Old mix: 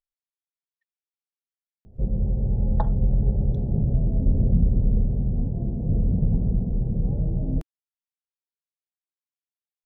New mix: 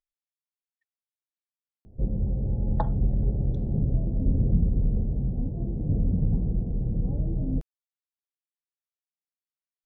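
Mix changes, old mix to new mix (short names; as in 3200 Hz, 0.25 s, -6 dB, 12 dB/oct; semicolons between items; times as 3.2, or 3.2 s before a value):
background: send -10.5 dB; master: add bell 300 Hz +9.5 dB 0.22 oct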